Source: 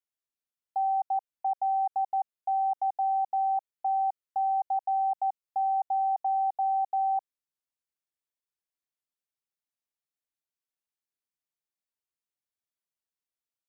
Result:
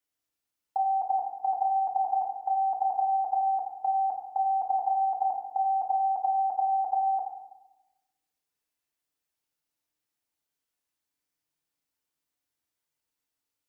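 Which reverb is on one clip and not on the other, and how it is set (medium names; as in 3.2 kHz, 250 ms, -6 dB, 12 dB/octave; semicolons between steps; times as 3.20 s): FDN reverb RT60 1 s, low-frequency decay 1.4×, high-frequency decay 0.85×, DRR 0.5 dB; trim +4.5 dB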